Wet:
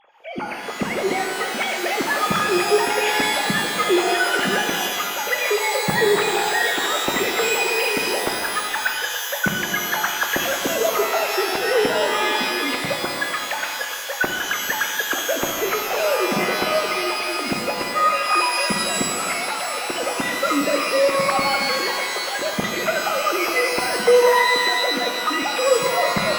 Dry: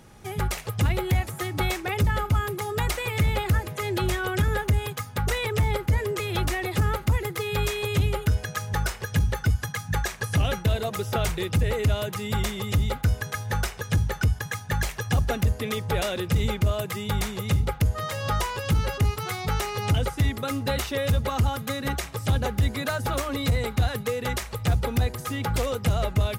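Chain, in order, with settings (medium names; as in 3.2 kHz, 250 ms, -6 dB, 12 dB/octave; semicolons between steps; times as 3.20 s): formants replaced by sine waves; pitch-shifted reverb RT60 2.1 s, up +12 st, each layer -2 dB, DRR 2.5 dB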